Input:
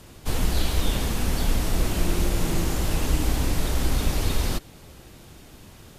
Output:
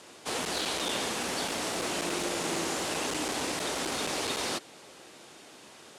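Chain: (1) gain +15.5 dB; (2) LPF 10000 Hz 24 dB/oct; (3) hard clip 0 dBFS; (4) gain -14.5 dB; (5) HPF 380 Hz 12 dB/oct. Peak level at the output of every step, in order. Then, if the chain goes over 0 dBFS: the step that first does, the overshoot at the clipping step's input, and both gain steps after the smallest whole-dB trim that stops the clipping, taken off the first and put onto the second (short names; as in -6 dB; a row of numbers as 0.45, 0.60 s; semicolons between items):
+6.5, +6.5, 0.0, -14.5, -18.5 dBFS; step 1, 6.5 dB; step 1 +8.5 dB, step 4 -7.5 dB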